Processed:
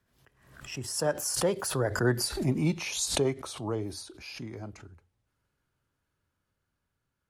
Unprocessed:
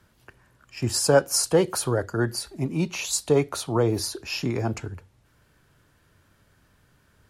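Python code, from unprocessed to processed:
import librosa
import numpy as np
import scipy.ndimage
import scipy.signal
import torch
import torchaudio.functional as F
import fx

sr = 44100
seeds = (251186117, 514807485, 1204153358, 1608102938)

y = fx.doppler_pass(x, sr, speed_mps=23, closest_m=9.2, pass_at_s=2.34)
y = fx.pre_swell(y, sr, db_per_s=78.0)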